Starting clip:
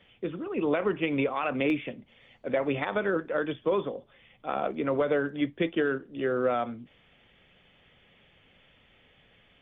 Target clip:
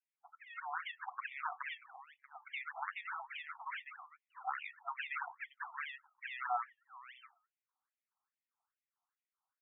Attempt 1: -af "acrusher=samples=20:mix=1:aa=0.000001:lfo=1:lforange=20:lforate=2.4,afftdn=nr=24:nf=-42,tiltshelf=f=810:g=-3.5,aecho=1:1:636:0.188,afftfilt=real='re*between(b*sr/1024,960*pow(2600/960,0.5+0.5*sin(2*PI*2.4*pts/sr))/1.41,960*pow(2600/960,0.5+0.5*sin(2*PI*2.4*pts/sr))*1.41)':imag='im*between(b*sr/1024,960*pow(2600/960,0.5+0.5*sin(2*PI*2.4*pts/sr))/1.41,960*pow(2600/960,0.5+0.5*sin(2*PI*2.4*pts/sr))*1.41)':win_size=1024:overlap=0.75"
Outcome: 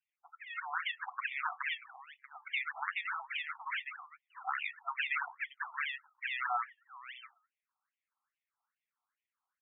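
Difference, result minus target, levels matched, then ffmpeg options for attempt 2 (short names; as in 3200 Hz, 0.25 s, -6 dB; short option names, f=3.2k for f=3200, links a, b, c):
1000 Hz band -3.0 dB
-af "acrusher=samples=20:mix=1:aa=0.000001:lfo=1:lforange=20:lforate=2.4,afftdn=nr=24:nf=-42,tiltshelf=f=810:g=7,aecho=1:1:636:0.188,afftfilt=real='re*between(b*sr/1024,960*pow(2600/960,0.5+0.5*sin(2*PI*2.4*pts/sr))/1.41,960*pow(2600/960,0.5+0.5*sin(2*PI*2.4*pts/sr))*1.41)':imag='im*between(b*sr/1024,960*pow(2600/960,0.5+0.5*sin(2*PI*2.4*pts/sr))/1.41,960*pow(2600/960,0.5+0.5*sin(2*PI*2.4*pts/sr))*1.41)':win_size=1024:overlap=0.75"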